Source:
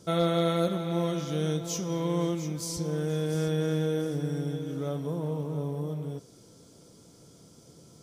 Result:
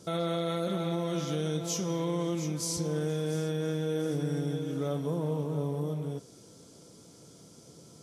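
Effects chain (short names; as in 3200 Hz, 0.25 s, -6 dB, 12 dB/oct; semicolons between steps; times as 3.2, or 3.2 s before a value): limiter -23 dBFS, peak gain reduction 7.5 dB; low shelf 64 Hz -10 dB; gain +1.5 dB; Vorbis 48 kbps 32000 Hz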